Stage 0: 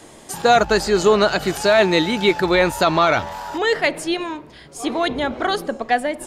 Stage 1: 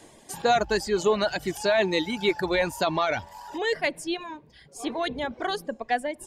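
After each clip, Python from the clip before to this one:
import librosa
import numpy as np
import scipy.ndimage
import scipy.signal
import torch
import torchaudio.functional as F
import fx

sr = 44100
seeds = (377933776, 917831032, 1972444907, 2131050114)

y = fx.dereverb_blind(x, sr, rt60_s=0.95)
y = fx.notch(y, sr, hz=1300.0, q=6.7)
y = F.gain(torch.from_numpy(y), -7.0).numpy()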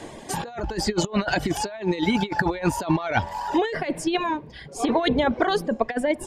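y = fx.high_shelf(x, sr, hz=9200.0, db=-7.5)
y = fx.over_compress(y, sr, threshold_db=-30.0, ratio=-0.5)
y = fx.high_shelf(y, sr, hz=3900.0, db=-7.0)
y = F.gain(torch.from_numpy(y), 8.0).numpy()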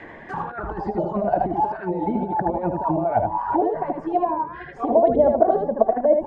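y = fx.reverse_delay(x, sr, ms=258, wet_db=-14)
y = y + 10.0 ** (-3.5 / 20.0) * np.pad(y, (int(77 * sr / 1000.0), 0))[:len(y)]
y = fx.envelope_lowpass(y, sr, base_hz=640.0, top_hz=2100.0, q=4.9, full_db=-17.5, direction='down')
y = F.gain(torch.from_numpy(y), -4.5).numpy()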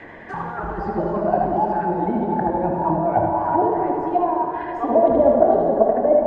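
y = fx.rev_plate(x, sr, seeds[0], rt60_s=3.9, hf_ratio=0.85, predelay_ms=0, drr_db=1.5)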